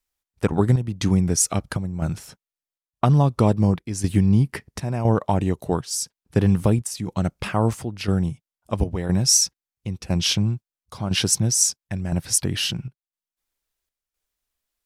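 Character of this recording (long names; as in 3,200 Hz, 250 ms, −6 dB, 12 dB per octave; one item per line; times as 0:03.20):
chopped level 0.99 Hz, depth 60%, duty 75%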